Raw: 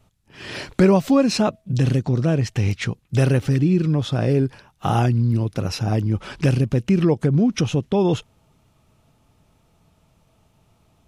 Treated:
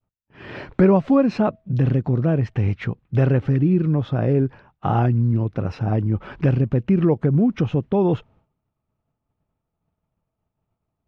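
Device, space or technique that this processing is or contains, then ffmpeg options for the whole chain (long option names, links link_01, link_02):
hearing-loss simulation: -af "lowpass=1800,agate=range=-33dB:threshold=-47dB:ratio=3:detection=peak"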